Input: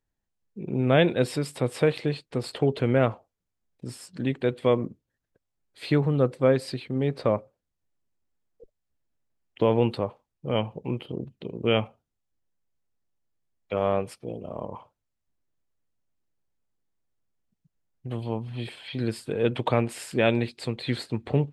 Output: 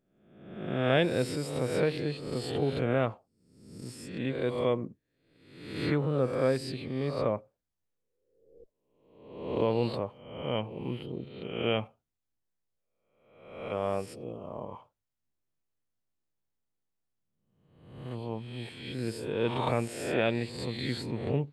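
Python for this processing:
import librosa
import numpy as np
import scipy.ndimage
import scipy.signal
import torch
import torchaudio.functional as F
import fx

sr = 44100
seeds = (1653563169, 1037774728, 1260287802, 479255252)

y = fx.spec_swells(x, sr, rise_s=0.87)
y = y * 10.0 ** (-7.0 / 20.0)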